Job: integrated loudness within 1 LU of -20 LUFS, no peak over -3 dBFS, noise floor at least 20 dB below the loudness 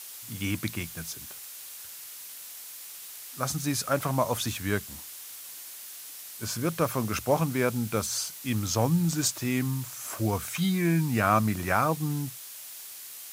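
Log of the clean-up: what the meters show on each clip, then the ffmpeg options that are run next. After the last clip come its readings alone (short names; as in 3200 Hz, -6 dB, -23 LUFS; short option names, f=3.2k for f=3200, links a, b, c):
noise floor -43 dBFS; noise floor target -49 dBFS; loudness -28.5 LUFS; peak -9.5 dBFS; loudness target -20.0 LUFS
-> -af "afftdn=nr=6:nf=-43"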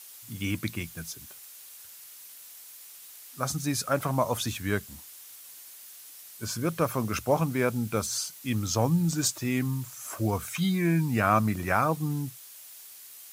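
noise floor -48 dBFS; noise floor target -49 dBFS
-> -af "afftdn=nr=6:nf=-48"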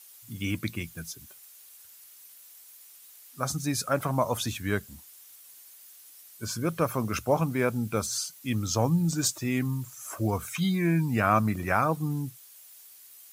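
noise floor -52 dBFS; loudness -28.5 LUFS; peak -10.0 dBFS; loudness target -20.0 LUFS
-> -af "volume=8.5dB,alimiter=limit=-3dB:level=0:latency=1"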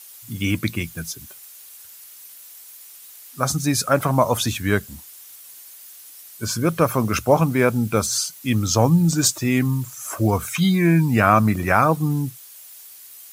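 loudness -20.0 LUFS; peak -3.0 dBFS; noise floor -43 dBFS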